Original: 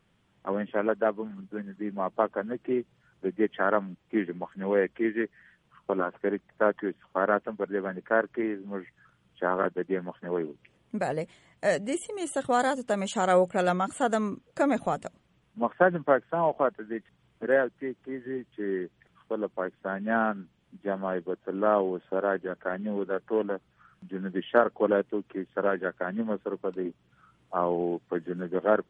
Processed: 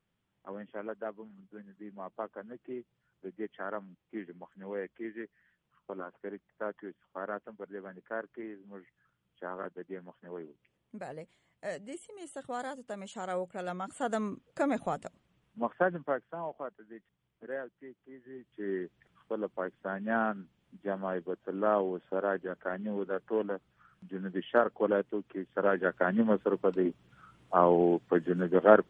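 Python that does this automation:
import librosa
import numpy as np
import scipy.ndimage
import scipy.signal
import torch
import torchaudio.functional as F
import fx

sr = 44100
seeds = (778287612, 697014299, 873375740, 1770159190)

y = fx.gain(x, sr, db=fx.line((13.62, -13.0), (14.2, -5.0), (15.7, -5.0), (16.62, -15.0), (18.27, -15.0), (18.69, -4.0), (25.45, -4.0), (26.04, 3.5)))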